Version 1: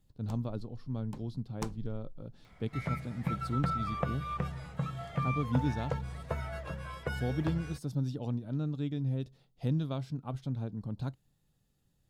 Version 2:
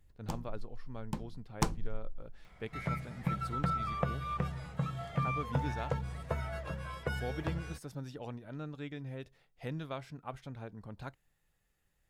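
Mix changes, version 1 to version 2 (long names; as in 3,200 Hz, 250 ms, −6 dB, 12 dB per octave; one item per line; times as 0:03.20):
speech: add octave-band graphic EQ 125/250/2,000/4,000 Hz −10/−8/+10/−6 dB
first sound +8.0 dB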